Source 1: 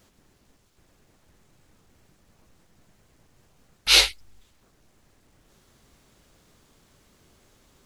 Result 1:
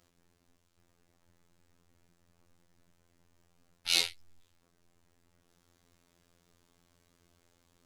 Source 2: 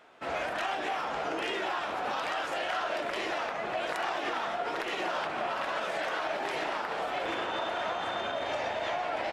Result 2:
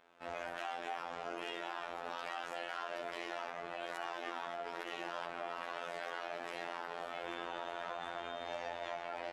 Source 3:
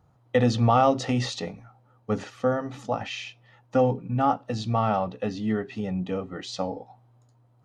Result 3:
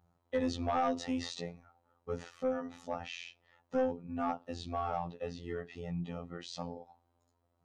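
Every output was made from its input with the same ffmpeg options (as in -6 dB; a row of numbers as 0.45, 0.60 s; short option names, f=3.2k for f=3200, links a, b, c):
-filter_complex "[0:a]afftfilt=real='hypot(re,im)*cos(PI*b)':imag='0':win_size=2048:overlap=0.75,acrossover=split=3800[a][b];[a]asoftclip=type=tanh:threshold=-16.5dB[c];[c][b]amix=inputs=2:normalize=0,volume=-6dB"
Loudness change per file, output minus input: -11.5, -10.0, -11.0 LU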